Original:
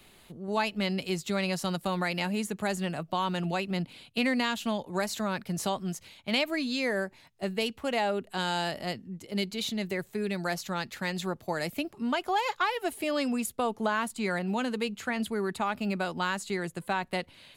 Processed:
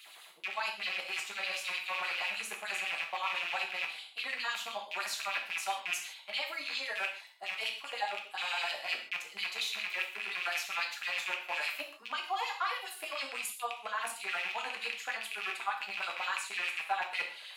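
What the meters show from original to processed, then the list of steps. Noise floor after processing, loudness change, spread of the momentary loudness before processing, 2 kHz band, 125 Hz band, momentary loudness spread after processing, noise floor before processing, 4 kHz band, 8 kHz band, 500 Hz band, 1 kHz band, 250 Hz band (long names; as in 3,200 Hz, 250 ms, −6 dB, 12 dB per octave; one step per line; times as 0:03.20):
−53 dBFS, −4.0 dB, 6 LU, 0.0 dB, below −35 dB, 4 LU, −58 dBFS, −1.0 dB, −2.5 dB, −14.5 dB, −5.0 dB, −30.5 dB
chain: loose part that buzzes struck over −38 dBFS, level −20 dBFS
reversed playback
downward compressor 6 to 1, threshold −36 dBFS, peak gain reduction 13.5 dB
reversed playback
auto-filter high-pass sine 9.8 Hz 710–3,600 Hz
reverb whose tail is shaped and stops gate 180 ms falling, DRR 0 dB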